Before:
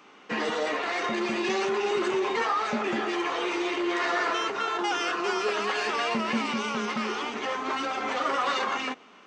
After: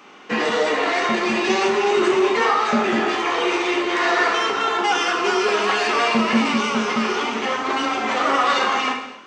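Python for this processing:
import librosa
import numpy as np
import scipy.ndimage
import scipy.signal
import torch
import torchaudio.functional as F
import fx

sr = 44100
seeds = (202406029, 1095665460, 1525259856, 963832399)

y = fx.rev_gated(x, sr, seeds[0], gate_ms=320, shape='falling', drr_db=2.5)
y = y * librosa.db_to_amplitude(6.5)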